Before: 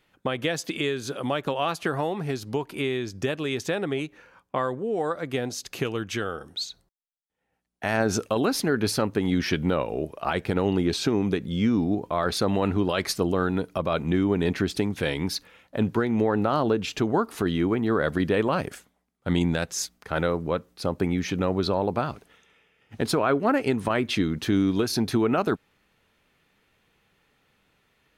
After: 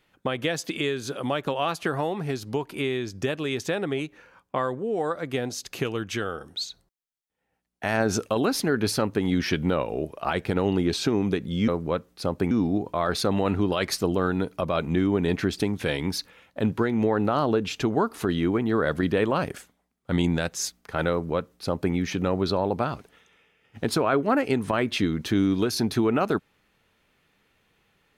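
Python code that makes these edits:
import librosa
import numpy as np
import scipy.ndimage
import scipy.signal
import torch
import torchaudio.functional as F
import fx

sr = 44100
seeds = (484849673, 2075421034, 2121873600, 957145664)

y = fx.edit(x, sr, fx.duplicate(start_s=20.28, length_s=0.83, to_s=11.68), tone=tone)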